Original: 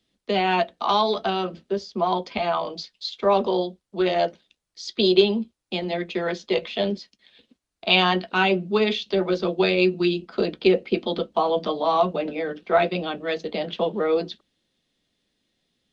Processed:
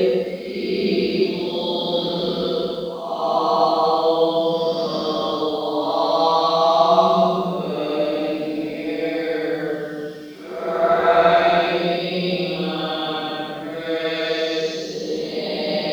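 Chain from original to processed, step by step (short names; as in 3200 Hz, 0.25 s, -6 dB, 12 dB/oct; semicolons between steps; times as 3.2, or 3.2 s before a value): bit-crush 11-bit; resonant high shelf 3700 Hz +7.5 dB, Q 1.5; Paulstretch 5.6×, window 0.25 s, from 10.76; gain +4 dB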